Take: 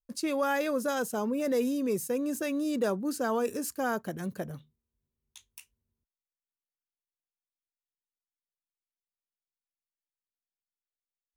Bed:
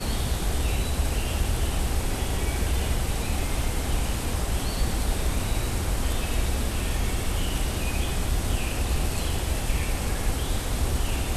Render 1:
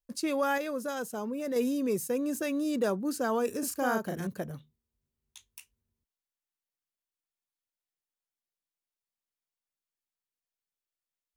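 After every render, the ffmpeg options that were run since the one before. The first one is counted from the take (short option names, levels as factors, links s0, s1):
-filter_complex "[0:a]asettb=1/sr,asplit=3[s0][s1][s2];[s0]atrim=end=3.594[s3];[s1]atrim=start=3.59:end=4.27,asetpts=PTS-STARTPTS,afade=t=in:d=0.004:c=qsin,afade=t=out:st=0.676:d=0.004:c=qsin,asplit=2[s4][s5];[s5]adelay=36,volume=0.708[s6];[s4][s6]amix=inputs=2:normalize=0,atrim=end_sample=29988[s7];[s2]atrim=start=4.266[s8];[s3][s7]acrossfade=d=0.004:c1=hsin:c2=qsin[s9];[s9][s8]acrossfade=d=0.004:c1=qsin:c2=hsin,asplit=3[s10][s11][s12];[s10]atrim=end=0.582[s13];[s11]atrim=start=0.578:end=1.562,asetpts=PTS-STARTPTS,volume=0.596[s14];[s12]atrim=start=1.558[s15];[s13][s14]acrossfade=d=0.004:c1=hsin:c2=hsin[s16];[s16][s15]acrossfade=d=0.004:c1=hsin:c2=hsin"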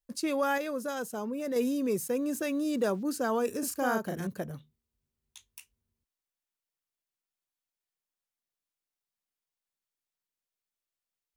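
-filter_complex "[0:a]asettb=1/sr,asplit=3[s0][s1][s2];[s0]atrim=end=1.614[s3];[s1]atrim=start=1.61:end=3.03,asetpts=PTS-STARTPTS,afade=t=in:d=0.004:c=qsin,afade=t=out:st=1.416:d=0.004:c=qsin,aeval=exprs='val(0)*gte(abs(val(0)),0.00237)':c=same[s4];[s2]atrim=start=3.026[s5];[s3][s4]acrossfade=d=0.004:c1=hsin:c2=qsin[s6];[s6][s5]acrossfade=d=0.004:c1=qsin:c2=hsin"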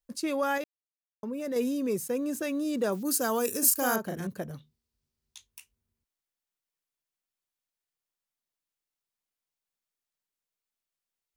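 -filter_complex "[0:a]asettb=1/sr,asplit=3[s0][s1][s2];[s0]atrim=end=2.924[s3];[s1]atrim=start=2.92:end=3.96,asetpts=PTS-STARTPTS,afade=t=in:d=0.004:c=qsin,afade=t=out:st=1.036:d=0.004:c=qsin,aemphasis=mode=production:type=75kf[s4];[s2]atrim=start=3.956[s5];[s3][s4]acrossfade=d=0.004:c1=hsin:c2=qsin[s6];[s6][s5]acrossfade=d=0.004:c1=qsin:c2=hsin,asettb=1/sr,asplit=3[s7][s8][s9];[s7]atrim=end=4.484[s10];[s8]atrim=start=4.48:end=5.47,asetpts=PTS-STARTPTS,afade=t=in:d=0.004:c=qsin,afade=t=out:st=0.986:d=0.004:c=qsin,equalizer=f=4800:t=o:w=0.73:g=6[s11];[s9]atrim=start=5.466[s12];[s10][s11]acrossfade=d=0.004:c1=hsin:c2=qsin[s13];[s13][s12]acrossfade=d=0.004:c1=qsin:c2=hsin,asplit=3[s14][s15][s16];[s14]atrim=end=0.64,asetpts=PTS-STARTPTS,afade=t=out:st=0.636:d=0.004:c=hsin[s17];[s15]atrim=start=0.64:end=1.23,asetpts=PTS-STARTPTS,volume=0[s18];[s16]atrim=start=1.23,asetpts=PTS-STARTPTS,afade=t=in:d=0.004:c=hsin[s19];[s17][s18][s19]concat=n=3:v=0:a=1"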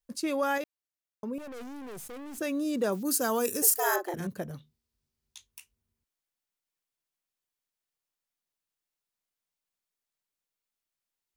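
-filter_complex "[0:a]asettb=1/sr,asplit=3[s0][s1][s2];[s0]atrim=end=1.384[s3];[s1]atrim=start=1.38:end=2.38,asetpts=PTS-STARTPTS,afade=t=in:d=0.004:c=qsin,afade=t=out:st=0.996:d=0.004:c=qsin,aeval=exprs='(tanh(112*val(0)+0.5)-tanh(0.5))/112':c=same[s4];[s2]atrim=start=2.376[s5];[s3][s4]acrossfade=d=0.004:c1=hsin:c2=qsin[s6];[s6][s5]acrossfade=d=0.004:c1=qsin:c2=hsin,asettb=1/sr,asplit=3[s7][s8][s9];[s7]atrim=end=3.624[s10];[s8]atrim=start=3.62:end=4.14,asetpts=PTS-STARTPTS,afade=t=in:d=0.004:c=qsin,afade=t=out:st=0.516:d=0.004:c=qsin,afreqshift=170[s11];[s9]atrim=start=4.136[s12];[s10][s11]acrossfade=d=0.004:c1=hsin:c2=qsin[s13];[s13][s12]acrossfade=d=0.004:c1=qsin:c2=hsin"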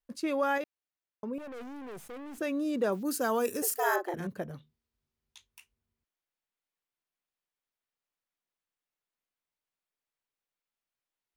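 -af "bass=f=250:g=-3,treble=f=4000:g=-9"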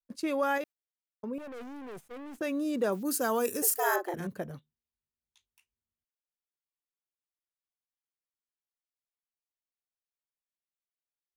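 -af "agate=range=0.224:threshold=0.00631:ratio=16:detection=peak,adynamicequalizer=threshold=0.00251:dfrequency=6200:dqfactor=0.7:tfrequency=6200:tqfactor=0.7:attack=5:release=100:ratio=0.375:range=2.5:mode=boostabove:tftype=highshelf"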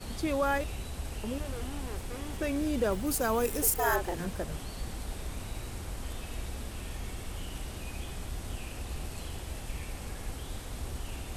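-filter_complex "[1:a]volume=0.237[s0];[0:a][s0]amix=inputs=2:normalize=0"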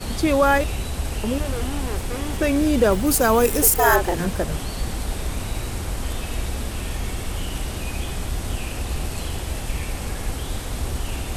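-af "volume=3.76,alimiter=limit=0.708:level=0:latency=1"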